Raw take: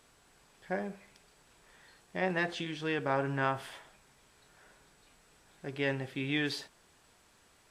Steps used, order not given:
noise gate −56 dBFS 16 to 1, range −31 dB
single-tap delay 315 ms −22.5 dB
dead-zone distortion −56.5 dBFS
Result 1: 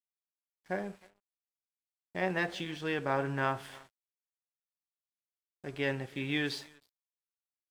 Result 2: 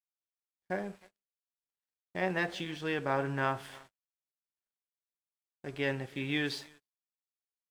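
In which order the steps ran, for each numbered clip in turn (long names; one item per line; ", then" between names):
noise gate, then single-tap delay, then dead-zone distortion
single-tap delay, then dead-zone distortion, then noise gate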